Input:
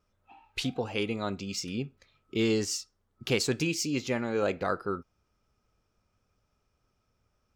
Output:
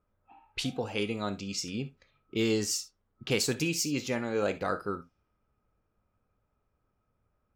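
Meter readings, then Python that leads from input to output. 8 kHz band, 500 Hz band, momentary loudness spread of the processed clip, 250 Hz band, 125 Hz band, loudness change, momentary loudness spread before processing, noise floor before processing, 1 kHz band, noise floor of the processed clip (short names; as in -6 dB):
+2.0 dB, -1.5 dB, 11 LU, -1.0 dB, -1.0 dB, -0.5 dB, 10 LU, -76 dBFS, -1.0 dB, -78 dBFS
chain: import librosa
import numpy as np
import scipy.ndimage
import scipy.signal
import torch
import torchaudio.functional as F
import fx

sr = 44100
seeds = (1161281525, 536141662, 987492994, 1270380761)

y = fx.env_lowpass(x, sr, base_hz=1700.0, full_db=-29.0)
y = fx.high_shelf(y, sr, hz=9600.0, db=11.0)
y = fx.rev_gated(y, sr, seeds[0], gate_ms=90, shape='flat', drr_db=11.0)
y = F.gain(torch.from_numpy(y), -1.5).numpy()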